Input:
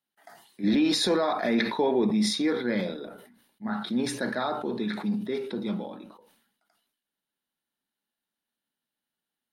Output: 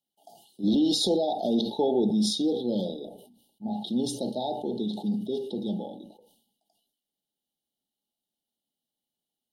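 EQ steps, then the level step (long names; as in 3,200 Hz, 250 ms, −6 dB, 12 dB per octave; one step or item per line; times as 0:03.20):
linear-phase brick-wall band-stop 890–2,800 Hz
0.0 dB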